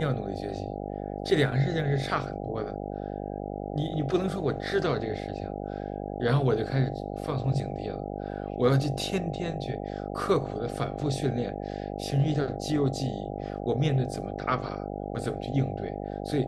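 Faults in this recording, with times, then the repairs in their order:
mains buzz 50 Hz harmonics 16 −35 dBFS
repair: hum removal 50 Hz, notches 16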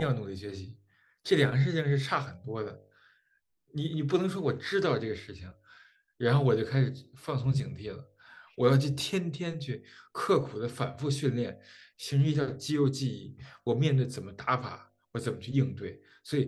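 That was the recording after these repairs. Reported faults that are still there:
none of them is left

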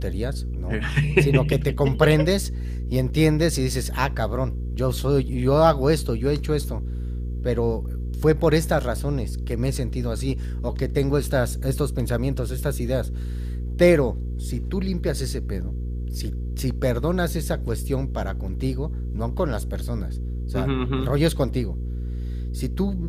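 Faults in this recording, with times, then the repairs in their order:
mains hum 60 Hz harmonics 8 −28 dBFS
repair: hum removal 60 Hz, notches 8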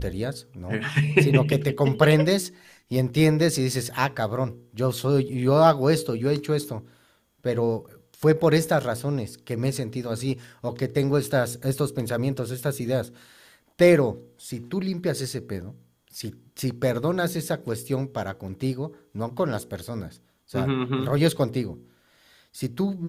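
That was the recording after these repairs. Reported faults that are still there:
none of them is left

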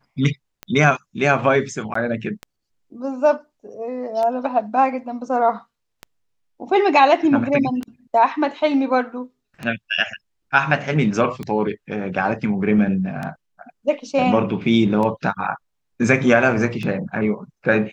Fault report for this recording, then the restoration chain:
scratch tick 33 1/3 rpm −15 dBFS
0:01.94–0:01.95: drop-out 14 ms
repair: click removal
repair the gap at 0:01.94, 14 ms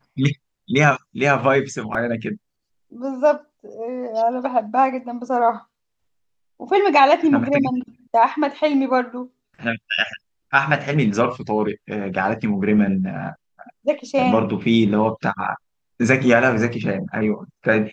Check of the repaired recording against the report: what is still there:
none of them is left

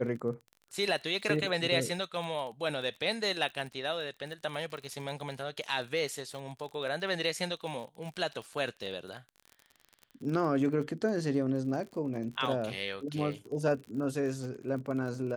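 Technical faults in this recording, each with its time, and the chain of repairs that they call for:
surface crackle 36 per second −39 dBFS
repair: click removal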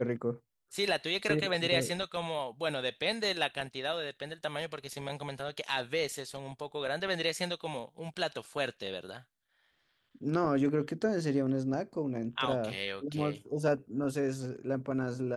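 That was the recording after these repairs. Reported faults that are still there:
none of them is left

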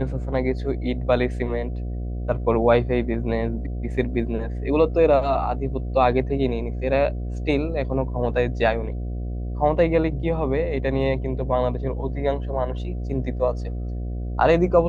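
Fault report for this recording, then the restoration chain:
mains buzz 60 Hz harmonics 12 −28 dBFS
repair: hum removal 60 Hz, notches 12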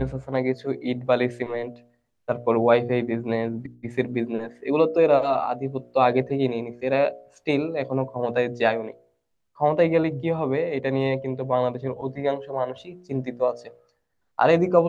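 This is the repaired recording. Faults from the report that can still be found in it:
none of them is left

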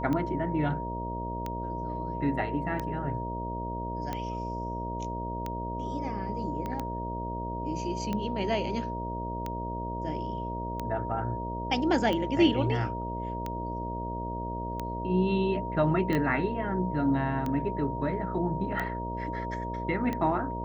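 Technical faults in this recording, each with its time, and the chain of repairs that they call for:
mains buzz 60 Hz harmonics 11 −36 dBFS
scratch tick 45 rpm −19 dBFS
whistle 940 Hz −35 dBFS
0:06.66: click −22 dBFS
0:16.15: click −17 dBFS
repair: click removal
hum removal 60 Hz, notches 11
notch filter 940 Hz, Q 30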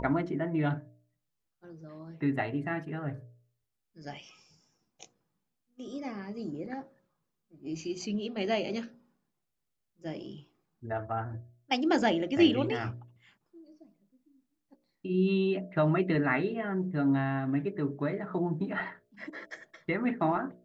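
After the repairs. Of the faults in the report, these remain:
0:06.66: click
0:16.15: click

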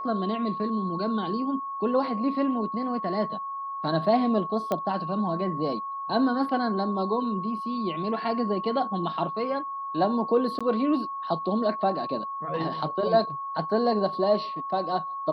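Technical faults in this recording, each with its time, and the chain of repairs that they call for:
whistle 1,100 Hz −31 dBFS
0:04.72: click −14 dBFS
0:10.59–0:10.61: drop-out 16 ms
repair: click removal
notch filter 1,100 Hz, Q 30
repair the gap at 0:10.59, 16 ms

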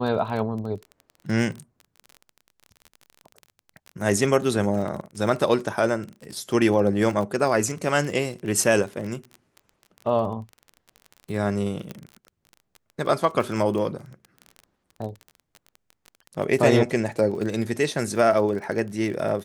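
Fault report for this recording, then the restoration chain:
surface crackle 28 per second −31 dBFS
0:11.91: click −19 dBFS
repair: click removal

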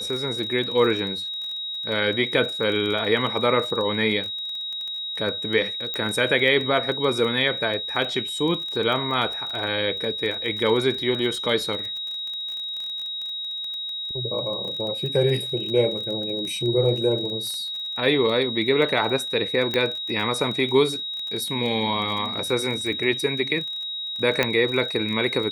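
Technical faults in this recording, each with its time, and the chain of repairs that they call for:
surface crackle 22 per second −29 dBFS
whistle 3,800 Hz −28 dBFS
0:05.94: click −14 dBFS
0:19.74: click −11 dBFS
0:24.43: click −6 dBFS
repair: click removal
notch filter 3,800 Hz, Q 30

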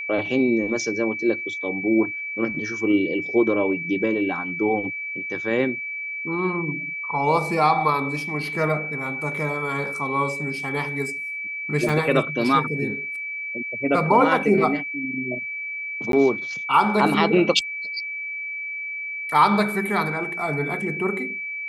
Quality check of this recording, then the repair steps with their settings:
whistle 2,300 Hz −28 dBFS
0:11.89: drop-out 3.3 ms
0:16.12–0:16.13: drop-out 12 ms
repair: notch filter 2,300 Hz, Q 30
repair the gap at 0:11.89, 3.3 ms
repair the gap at 0:16.12, 12 ms

